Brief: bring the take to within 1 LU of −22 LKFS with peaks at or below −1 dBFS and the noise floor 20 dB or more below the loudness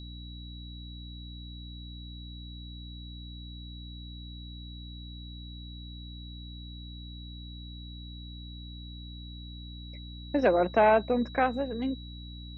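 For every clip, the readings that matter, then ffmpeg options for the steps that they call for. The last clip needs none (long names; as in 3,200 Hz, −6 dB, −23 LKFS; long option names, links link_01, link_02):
mains hum 60 Hz; hum harmonics up to 300 Hz; level of the hum −41 dBFS; interfering tone 3,900 Hz; level of the tone −48 dBFS; integrated loudness −34.0 LKFS; sample peak −11.0 dBFS; target loudness −22.0 LKFS
→ -af "bandreject=frequency=60:width_type=h:width=4,bandreject=frequency=120:width_type=h:width=4,bandreject=frequency=180:width_type=h:width=4,bandreject=frequency=240:width_type=h:width=4,bandreject=frequency=300:width_type=h:width=4"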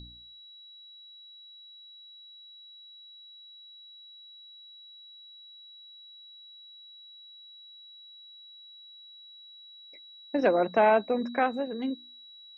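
mains hum none found; interfering tone 3,900 Hz; level of the tone −48 dBFS
→ -af "bandreject=frequency=3900:width=30"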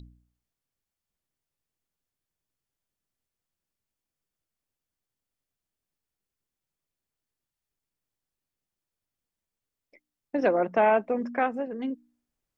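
interfering tone none found; integrated loudness −26.5 LKFS; sample peak −11.5 dBFS; target loudness −22.0 LKFS
→ -af "volume=4.5dB"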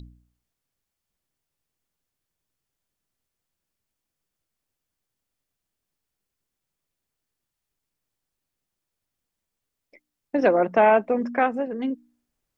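integrated loudness −22.0 LKFS; sample peak −7.0 dBFS; background noise floor −84 dBFS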